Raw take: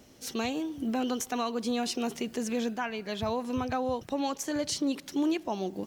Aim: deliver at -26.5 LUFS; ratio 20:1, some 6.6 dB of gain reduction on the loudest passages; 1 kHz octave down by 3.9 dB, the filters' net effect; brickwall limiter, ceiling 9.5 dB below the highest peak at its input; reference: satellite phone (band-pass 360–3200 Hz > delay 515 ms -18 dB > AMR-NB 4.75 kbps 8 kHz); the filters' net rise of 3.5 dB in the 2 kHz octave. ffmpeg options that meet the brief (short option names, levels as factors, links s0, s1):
-af "equalizer=f=1000:t=o:g=-7,equalizer=f=2000:t=o:g=8,acompressor=threshold=0.0282:ratio=20,alimiter=level_in=2.37:limit=0.0631:level=0:latency=1,volume=0.422,highpass=360,lowpass=3200,aecho=1:1:515:0.126,volume=8.41" -ar 8000 -c:a libopencore_amrnb -b:a 4750